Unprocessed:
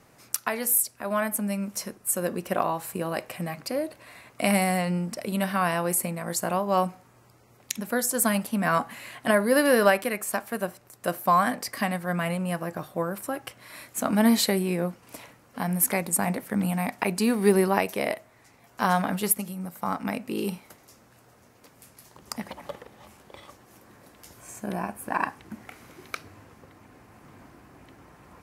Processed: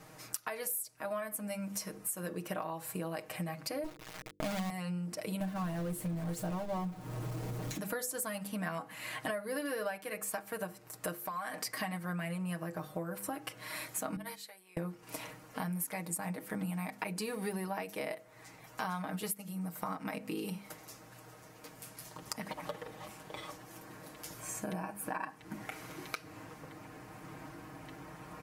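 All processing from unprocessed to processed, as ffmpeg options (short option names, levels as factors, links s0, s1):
-filter_complex "[0:a]asettb=1/sr,asplit=3[s0][s1][s2];[s0]atrim=end=3.844[s3];[s1]atrim=start=3.84:end=4.7,asetpts=PTS-STARTPTS,afade=t=in:d=0.004:c=qsin,afade=t=out:st=0.856:d=0.004:c=qsin,aemphasis=mode=reproduction:type=riaa,acrossover=split=2600[s4][s5];[s5]acompressor=threshold=0.00224:ratio=4:attack=1:release=60[s6];[s4][s6]amix=inputs=2:normalize=0,acrusher=bits=4:dc=4:mix=0:aa=0.000001[s7];[s2]atrim=start=4.696[s8];[s3][s7]acrossfade=d=0.004:c1=hsin:c2=qsin[s9];[s9][s8]acrossfade=d=0.004:c1=qsin:c2=hsin,asettb=1/sr,asplit=3[s10][s11][s12];[s10]atrim=end=5.404[s13];[s11]atrim=start=5.4:end=7.78,asetpts=PTS-STARTPTS,afade=t=in:d=0.004:c=qsin,afade=t=out:st=2.376:d=0.004:c=qsin,aeval=exprs='val(0)+0.5*0.119*sgn(val(0))':c=same,agate=range=0.0224:threshold=0.141:ratio=3:release=100:detection=peak,tiltshelf=f=680:g=8[s14];[s12]atrim=start=7.776[s15];[s13][s14]acrossfade=d=0.004:c1=hsin:c2=qsin[s16];[s16][s15]acrossfade=d=0.004:c1=qsin:c2=hsin,asettb=1/sr,asplit=3[s17][s18][s19];[s17]atrim=end=11.144[s20];[s18]atrim=start=11.14:end=11.64,asetpts=PTS-STARTPTS,afade=t=in:d=0.004:c=qsin,afade=t=out:st=0.496:d=0.004:c=qsin,lowshelf=f=420:g=-8.5,acompressor=threshold=0.0316:ratio=6:attack=3.2:release=140:knee=1:detection=peak[s21];[s19]atrim=start=11.636[s22];[s20][s21]acrossfade=d=0.004:c1=hsin:c2=qsin[s23];[s23][s22]acrossfade=d=0.004:c1=qsin:c2=hsin,asettb=1/sr,asplit=3[s24][s25][s26];[s24]atrim=end=14.164[s27];[s25]atrim=start=14.16:end=14.77,asetpts=PTS-STARTPTS,afade=t=in:d=0.004:c=qsin,afade=t=out:st=0.606:d=0.004:c=qsin,agate=range=0.0501:threshold=0.126:ratio=16:release=100:detection=peak,highpass=720,acompressor=threshold=0.0112:ratio=1.5:attack=3.2:release=140:knee=1:detection=peak[s28];[s26]atrim=start=14.766[s29];[s27][s28]acrossfade=d=0.004:c1=hsin:c2=qsin[s30];[s30][s29]acrossfade=d=0.004:c1=qsin:c2=hsin,bandreject=f=50:t=h:w=6,bandreject=f=100:t=h:w=6,bandreject=f=150:t=h:w=6,bandreject=f=200:t=h:w=6,bandreject=f=250:t=h:w=6,bandreject=f=300:t=h:w=6,bandreject=f=350:t=h:w=6,bandreject=f=400:t=h:w=6,bandreject=f=450:t=h:w=6,bandreject=f=500:t=h:w=6,aecho=1:1:6.4:0.78,acompressor=threshold=0.0141:ratio=6,volume=1.12"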